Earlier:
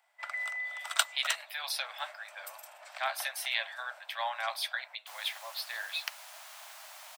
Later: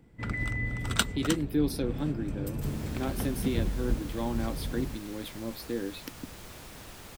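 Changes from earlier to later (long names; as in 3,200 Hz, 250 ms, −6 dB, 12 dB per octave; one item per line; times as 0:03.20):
speech: add parametric band 2,300 Hz −12.5 dB 2.6 octaves
second sound: entry −2.45 s
master: remove Butterworth high-pass 610 Hz 96 dB per octave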